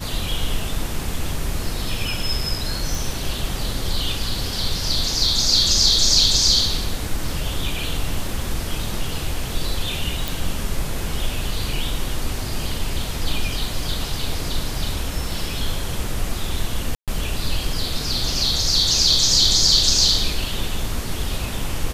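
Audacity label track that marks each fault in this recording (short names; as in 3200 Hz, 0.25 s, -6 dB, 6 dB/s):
2.950000	2.950000	pop
10.280000	10.280000	pop
16.950000	17.080000	gap 0.127 s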